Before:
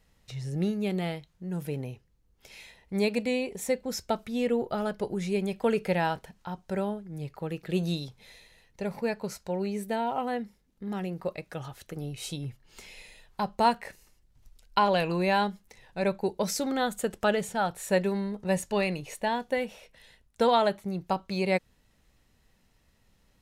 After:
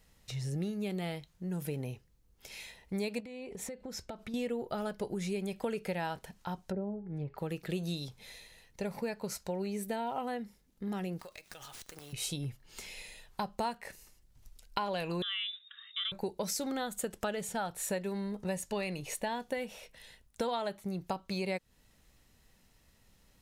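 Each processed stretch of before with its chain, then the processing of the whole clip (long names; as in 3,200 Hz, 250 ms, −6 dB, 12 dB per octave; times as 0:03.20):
0:03.20–0:04.34: low-pass filter 2,800 Hz 6 dB per octave + downward compressor 16 to 1, threshold −38 dBFS
0:06.65–0:07.38: treble cut that deepens with the level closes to 500 Hz, closed at −29 dBFS + hum removal 416.1 Hz, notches 12
0:11.19–0:12.13: spectral tilt +4.5 dB per octave + downward compressor 10 to 1, threshold −45 dBFS + windowed peak hold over 3 samples
0:15.22–0:16.12: voice inversion scrambler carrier 3,700 Hz + downward compressor 2.5 to 1, threshold −34 dBFS + linear-phase brick-wall high-pass 1,100 Hz
whole clip: high-shelf EQ 5,000 Hz +6 dB; downward compressor 4 to 1, threshold −33 dBFS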